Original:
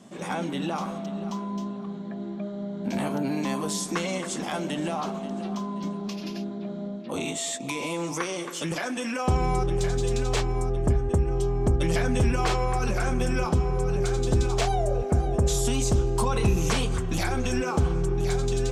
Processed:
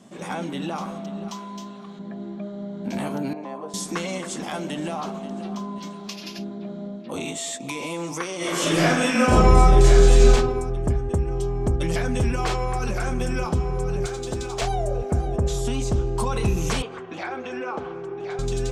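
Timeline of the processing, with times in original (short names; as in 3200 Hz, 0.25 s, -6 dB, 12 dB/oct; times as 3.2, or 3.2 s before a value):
1.28–1.99 tilt shelf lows -6.5 dB
3.33–3.74 band-pass 650 Hz, Q 1.3
5.78–6.39 tilt shelf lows -6 dB, about 920 Hz
8.37–10.32 reverb throw, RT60 0.99 s, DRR -11 dB
14.06–14.62 low shelf 200 Hz -11.5 dB
15.36–16.2 high shelf 5600 Hz -9.5 dB
16.82–18.39 BPF 360–2500 Hz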